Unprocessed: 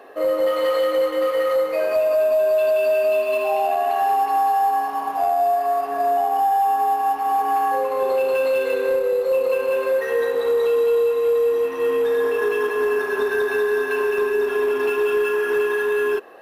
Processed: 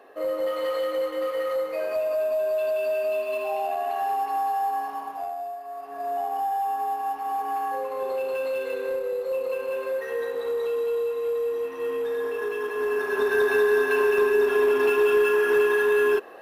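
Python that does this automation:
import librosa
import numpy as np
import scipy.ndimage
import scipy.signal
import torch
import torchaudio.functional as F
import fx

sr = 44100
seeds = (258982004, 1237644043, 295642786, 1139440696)

y = fx.gain(x, sr, db=fx.line((4.91, -7.0), (5.64, -17.5), (6.19, -8.0), (12.61, -8.0), (13.44, 0.0)))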